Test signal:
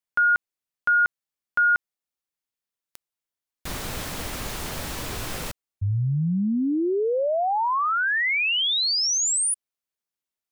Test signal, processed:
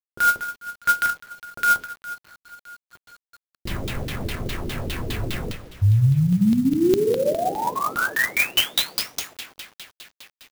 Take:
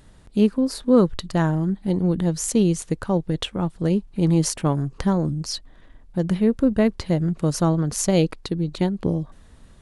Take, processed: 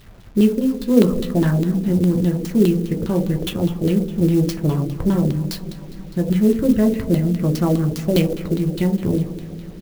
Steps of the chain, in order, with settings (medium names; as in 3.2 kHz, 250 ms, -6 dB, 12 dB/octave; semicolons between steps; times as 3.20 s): two-slope reverb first 0.52 s, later 4.9 s, from -18 dB, DRR 1 dB; LFO low-pass saw down 4.9 Hz 330–4100 Hz; peaking EQ 970 Hz -11.5 dB 2.3 oct; in parallel at -1 dB: peak limiter -17.5 dBFS; on the sum: bit crusher 8-bit; resampled via 16 kHz; sampling jitter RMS 0.027 ms; trim -1 dB